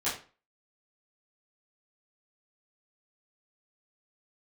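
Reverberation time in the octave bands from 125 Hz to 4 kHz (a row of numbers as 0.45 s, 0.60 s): 0.40 s, 0.40 s, 0.35 s, 0.35 s, 0.35 s, 0.30 s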